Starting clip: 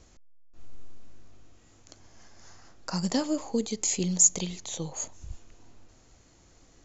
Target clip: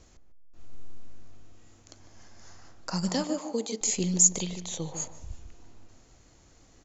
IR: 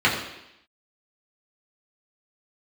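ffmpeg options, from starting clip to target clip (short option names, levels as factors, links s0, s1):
-filter_complex "[0:a]asettb=1/sr,asplit=3[s0][s1][s2];[s0]atrim=end=3.094[s3];[s1]atrim=start=3.09:end=3.81,asetpts=PTS-STARTPTS,afade=t=in:d=0.004:c=qsin,afade=t=out:st=0.716:d=0.004:c=qsin,highpass=290[s4];[s2]atrim=start=3.806[s5];[s3][s4]acrossfade=d=0.004:c1=hsin:c2=qsin[s6];[s6][s5]acrossfade=d=0.004:c1=qsin:c2=hsin,asplit=2[s7][s8];[s8]adelay=150,lowpass=f=1200:p=1,volume=0.398,asplit=2[s9][s10];[s10]adelay=150,lowpass=f=1200:p=1,volume=0.22,asplit=2[s11][s12];[s12]adelay=150,lowpass=f=1200:p=1,volume=0.22[s13];[s7][s9][s11][s13]amix=inputs=4:normalize=0"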